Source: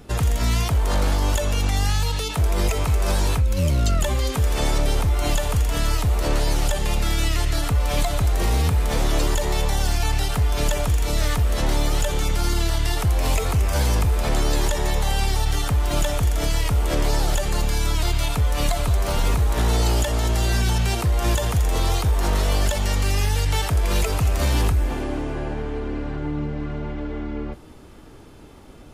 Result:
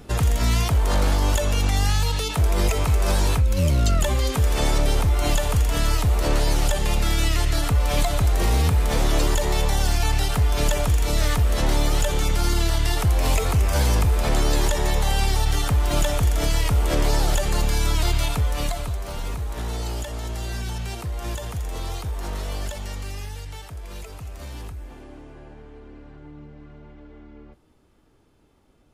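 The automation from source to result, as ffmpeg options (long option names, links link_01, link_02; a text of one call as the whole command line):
ffmpeg -i in.wav -af "volume=0.5dB,afade=type=out:start_time=18.14:duration=0.86:silence=0.334965,afade=type=out:start_time=22.65:duration=0.96:silence=0.446684" out.wav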